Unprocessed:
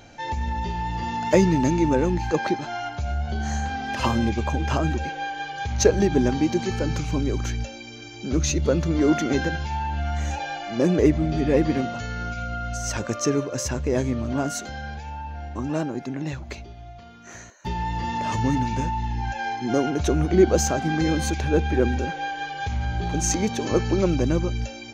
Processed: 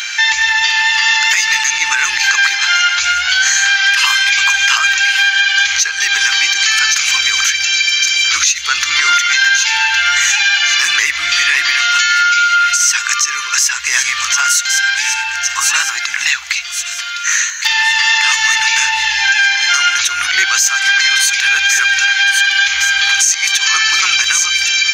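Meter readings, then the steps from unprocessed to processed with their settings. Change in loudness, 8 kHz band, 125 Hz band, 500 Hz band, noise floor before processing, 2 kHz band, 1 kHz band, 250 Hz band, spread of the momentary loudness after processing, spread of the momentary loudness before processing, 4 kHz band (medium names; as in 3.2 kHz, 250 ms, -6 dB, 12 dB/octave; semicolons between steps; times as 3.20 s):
+13.5 dB, +20.0 dB, under -20 dB, under -20 dB, -41 dBFS, +24.0 dB, +9.5 dB, under -25 dB, 4 LU, 11 LU, +25.5 dB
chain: inverse Chebyshev high-pass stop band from 600 Hz, stop band 50 dB; on a send: feedback echo behind a high-pass 1111 ms, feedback 40%, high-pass 2.5 kHz, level -13 dB; on the sum: compression 3:1, threshold -43 dBFS, peak gain reduction 17 dB; loudness maximiser +34 dB; trim -1 dB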